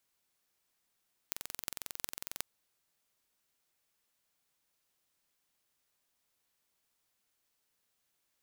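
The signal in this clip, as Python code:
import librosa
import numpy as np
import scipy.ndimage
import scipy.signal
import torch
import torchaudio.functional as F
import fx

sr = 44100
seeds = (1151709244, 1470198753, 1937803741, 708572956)

y = fx.impulse_train(sr, length_s=1.1, per_s=22.1, accent_every=8, level_db=-6.5)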